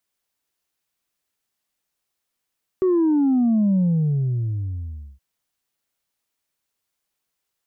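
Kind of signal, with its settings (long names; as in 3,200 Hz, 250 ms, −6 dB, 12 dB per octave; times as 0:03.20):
bass drop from 380 Hz, over 2.37 s, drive 1 dB, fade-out 1.43 s, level −15.5 dB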